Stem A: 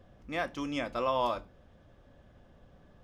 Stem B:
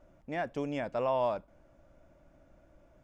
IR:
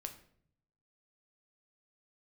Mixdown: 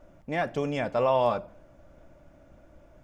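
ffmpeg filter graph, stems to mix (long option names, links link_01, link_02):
-filter_complex "[0:a]aphaser=in_gain=1:out_gain=1:delay=1:decay=0.61:speed=1.5:type=sinusoidal,volume=-7dB[link_01];[1:a]volume=3dB,asplit=3[link_02][link_03][link_04];[link_03]volume=-3.5dB[link_05];[link_04]apad=whole_len=133973[link_06];[link_01][link_06]sidechaingate=range=-33dB:threshold=-55dB:ratio=16:detection=peak[link_07];[2:a]atrim=start_sample=2205[link_08];[link_05][link_08]afir=irnorm=-1:irlink=0[link_09];[link_07][link_02][link_09]amix=inputs=3:normalize=0"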